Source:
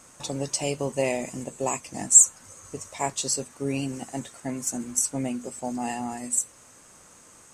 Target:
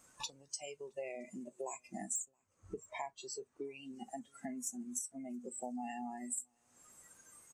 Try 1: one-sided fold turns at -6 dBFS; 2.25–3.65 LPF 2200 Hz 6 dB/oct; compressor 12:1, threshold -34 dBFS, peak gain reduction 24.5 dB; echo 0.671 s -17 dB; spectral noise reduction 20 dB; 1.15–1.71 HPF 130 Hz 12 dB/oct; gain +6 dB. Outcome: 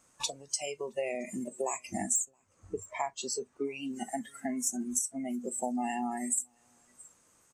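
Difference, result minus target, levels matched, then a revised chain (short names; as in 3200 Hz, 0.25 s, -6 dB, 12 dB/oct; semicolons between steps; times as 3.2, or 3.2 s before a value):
compressor: peak gain reduction -9 dB
one-sided fold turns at -6 dBFS; 2.25–3.65 LPF 2200 Hz 6 dB/oct; compressor 12:1, threshold -44 dBFS, peak gain reduction 34 dB; echo 0.671 s -17 dB; spectral noise reduction 20 dB; 1.15–1.71 HPF 130 Hz 12 dB/oct; gain +6 dB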